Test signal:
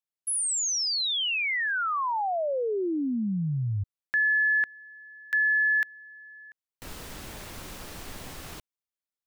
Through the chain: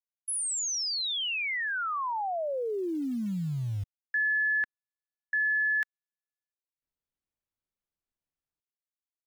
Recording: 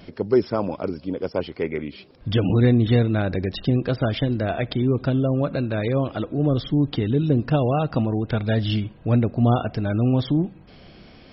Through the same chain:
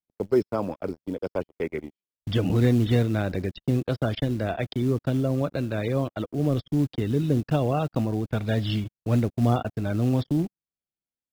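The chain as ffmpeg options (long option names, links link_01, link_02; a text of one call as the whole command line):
ffmpeg -i in.wav -filter_complex "[0:a]agate=range=-54dB:threshold=-33dB:ratio=16:release=27:detection=peak,acrossover=split=310|1100[link_01][link_02][link_03];[link_01]acrusher=bits=6:mode=log:mix=0:aa=0.000001[link_04];[link_04][link_02][link_03]amix=inputs=3:normalize=0,volume=-3.5dB" out.wav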